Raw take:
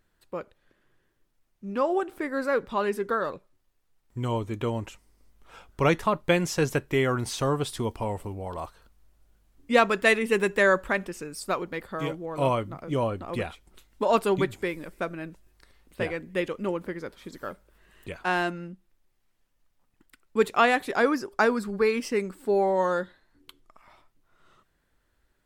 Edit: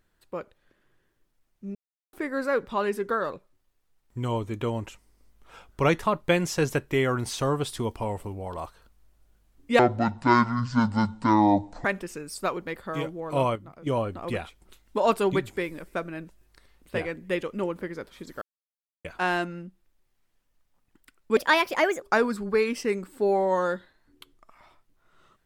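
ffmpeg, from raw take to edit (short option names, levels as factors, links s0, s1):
-filter_complex "[0:a]asplit=11[s0][s1][s2][s3][s4][s5][s6][s7][s8][s9][s10];[s0]atrim=end=1.75,asetpts=PTS-STARTPTS,afade=t=out:st=1.746:d=0.004:c=hsin[s11];[s1]atrim=start=1.75:end=2.13,asetpts=PTS-STARTPTS,volume=0[s12];[s2]atrim=start=2.13:end=9.794,asetpts=PTS-STARTPTS,afade=t=in:d=0.004:c=hsin[s13];[s3]atrim=start=9.79:end=10.9,asetpts=PTS-STARTPTS,asetrate=23814,aresample=44100[s14];[s4]atrim=start=10.896:end=12.612[s15];[s5]atrim=start=12.608:end=12.922,asetpts=PTS-STARTPTS,volume=0.398[s16];[s6]atrim=start=12.918:end=17.47,asetpts=PTS-STARTPTS,afade=t=out:st=4.548:d=0.004:c=hsin[s17];[s7]atrim=start=17.47:end=18.1,asetpts=PTS-STARTPTS,volume=0[s18];[s8]atrim=start=18.1:end=20.424,asetpts=PTS-STARTPTS,afade=t=in:d=0.004:c=hsin[s19];[s9]atrim=start=20.42:end=21.29,asetpts=PTS-STARTPTS,asetrate=58653,aresample=44100,atrim=end_sample=28847,asetpts=PTS-STARTPTS[s20];[s10]atrim=start=21.286[s21];[s11][s12][s13]concat=n=3:v=0:a=1[s22];[s22][s14]acrossfade=d=0.004:c1=hsin:c2=hsin[s23];[s23][s15]acrossfade=d=0.004:c1=hsin:c2=hsin[s24];[s24][s16]acrossfade=d=0.004:c1=hsin:c2=hsin[s25];[s17][s18][s19]concat=n=3:v=0:a=1[s26];[s25][s26]acrossfade=d=0.004:c1=hsin:c2=hsin[s27];[s27][s20]acrossfade=d=0.004:c1=hsin:c2=hsin[s28];[s28][s21]acrossfade=d=0.004:c1=hsin:c2=hsin"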